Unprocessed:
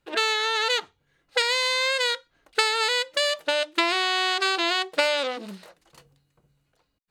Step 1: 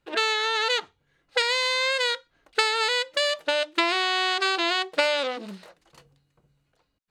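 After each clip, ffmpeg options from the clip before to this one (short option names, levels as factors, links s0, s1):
-af "highshelf=f=10000:g=-9"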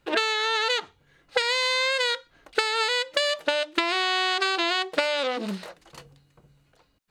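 -af "acompressor=threshold=0.0355:ratio=6,volume=2.51"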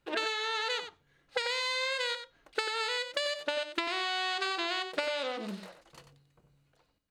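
-af "aecho=1:1:93:0.335,volume=0.376"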